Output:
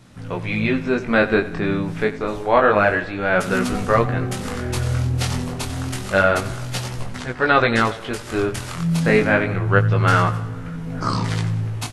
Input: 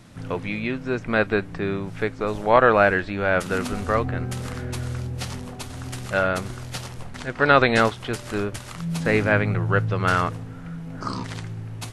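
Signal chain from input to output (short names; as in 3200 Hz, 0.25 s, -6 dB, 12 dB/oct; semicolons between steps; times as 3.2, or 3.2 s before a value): AGC gain up to 8 dB; feedback echo 91 ms, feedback 53%, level -16 dB; chorus 0.28 Hz, delay 16 ms, depth 7.8 ms; gain +2.5 dB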